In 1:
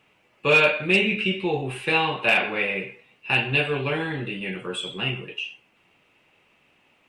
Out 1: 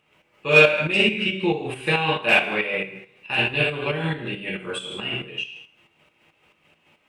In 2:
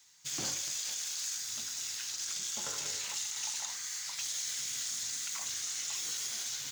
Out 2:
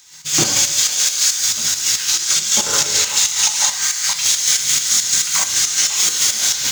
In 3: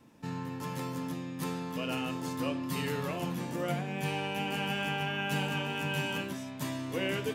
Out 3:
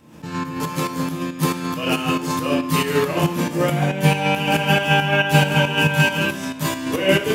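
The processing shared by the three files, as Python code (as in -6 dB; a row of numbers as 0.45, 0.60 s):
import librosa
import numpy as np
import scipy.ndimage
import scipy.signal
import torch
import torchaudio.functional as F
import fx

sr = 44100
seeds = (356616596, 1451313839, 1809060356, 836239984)

y = fx.rev_double_slope(x, sr, seeds[0], early_s=0.59, late_s=1.5, knee_db=-25, drr_db=0.5)
y = fx.volume_shaper(y, sr, bpm=138, per_beat=2, depth_db=-8, release_ms=124.0, shape='slow start')
y = librosa.util.normalize(y) * 10.0 ** (-1.5 / 20.0)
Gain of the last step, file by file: +0.5, +20.0, +14.0 dB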